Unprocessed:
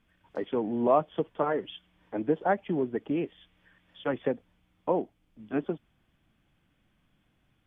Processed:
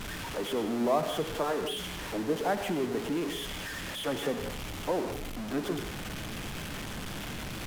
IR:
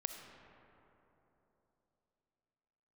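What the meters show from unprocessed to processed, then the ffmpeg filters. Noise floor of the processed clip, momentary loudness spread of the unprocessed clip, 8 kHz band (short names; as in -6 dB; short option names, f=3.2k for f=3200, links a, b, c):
-39 dBFS, 13 LU, n/a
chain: -filter_complex "[0:a]aeval=exprs='val(0)+0.5*0.0473*sgn(val(0))':c=same[a];[1:a]atrim=start_sample=2205,atrim=end_sample=6174,asetrate=28665,aresample=44100[b];[a][b]afir=irnorm=-1:irlink=0,volume=-6dB"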